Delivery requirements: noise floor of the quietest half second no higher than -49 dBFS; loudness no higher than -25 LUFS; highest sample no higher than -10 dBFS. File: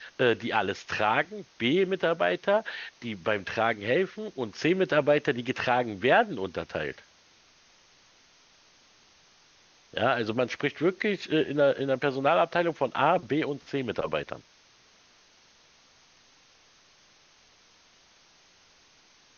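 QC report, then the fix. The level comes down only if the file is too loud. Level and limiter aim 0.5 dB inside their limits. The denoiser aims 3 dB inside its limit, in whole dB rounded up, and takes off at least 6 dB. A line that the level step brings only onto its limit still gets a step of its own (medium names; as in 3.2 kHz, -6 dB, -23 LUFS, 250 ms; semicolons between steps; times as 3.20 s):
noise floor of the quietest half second -60 dBFS: pass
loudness -27.5 LUFS: pass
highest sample -8.5 dBFS: fail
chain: peak limiter -10.5 dBFS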